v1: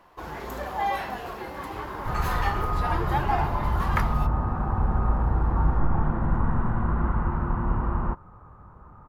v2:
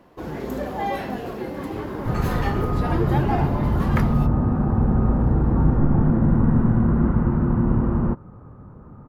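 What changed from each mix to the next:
master: add ten-band graphic EQ 125 Hz +8 dB, 250 Hz +11 dB, 500 Hz +6 dB, 1 kHz -5 dB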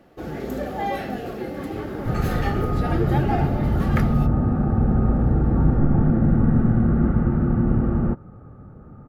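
master: add Butterworth band-stop 1 kHz, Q 4.9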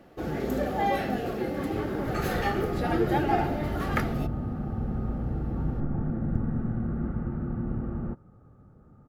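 second sound -11.5 dB

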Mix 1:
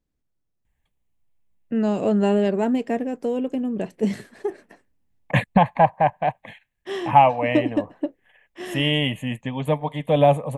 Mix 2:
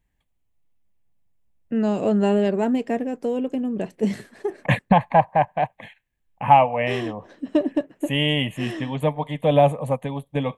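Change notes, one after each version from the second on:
second voice: entry -0.65 s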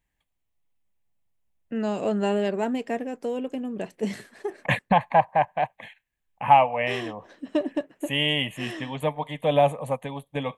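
master: add bass shelf 490 Hz -8 dB

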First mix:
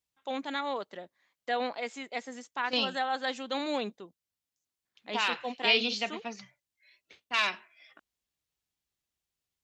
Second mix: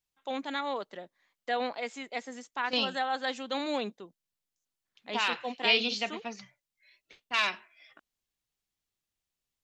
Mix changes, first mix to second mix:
first voice: add high-pass 100 Hz 24 dB/octave; master: remove high-pass 65 Hz

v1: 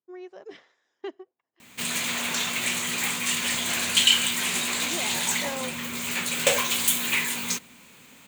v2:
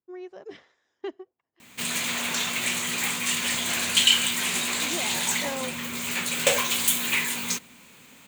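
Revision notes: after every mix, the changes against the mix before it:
speech: remove high-pass 260 Hz 6 dB/octave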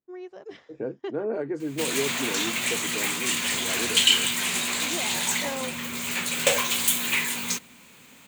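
second voice: unmuted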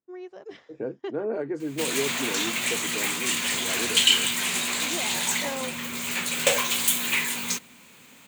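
master: add bass shelf 82 Hz -5 dB

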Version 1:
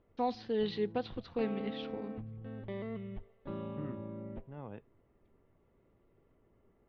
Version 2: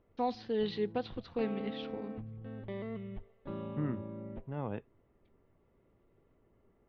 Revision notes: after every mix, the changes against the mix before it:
second voice +8.0 dB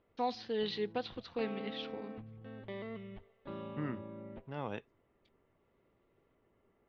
second voice: remove distance through air 310 m; master: add tilt EQ +2 dB/octave

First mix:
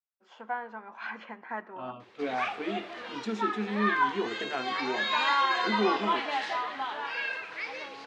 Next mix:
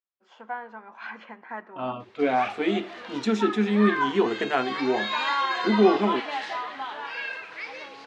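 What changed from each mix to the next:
second voice +9.5 dB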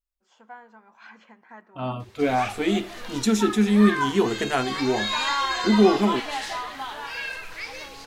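first voice -9.5 dB; master: remove band-pass 240–3200 Hz

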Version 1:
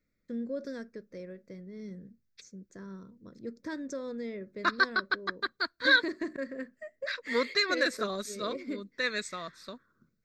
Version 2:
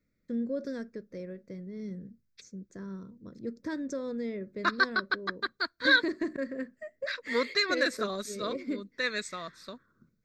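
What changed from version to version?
first voice: add bass shelf 420 Hz +5 dB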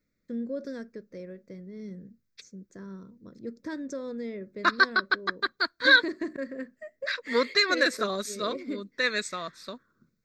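second voice +4.5 dB; master: add bass shelf 120 Hz -6 dB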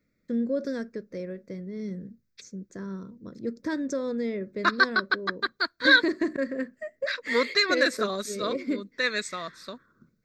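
first voice +6.0 dB

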